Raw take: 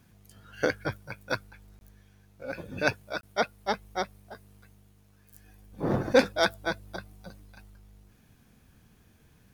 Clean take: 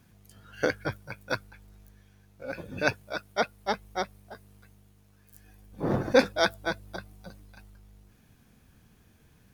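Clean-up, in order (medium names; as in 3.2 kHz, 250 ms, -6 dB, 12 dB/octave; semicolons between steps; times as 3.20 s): clip repair -11 dBFS; interpolate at 1.79/3.21 s, 21 ms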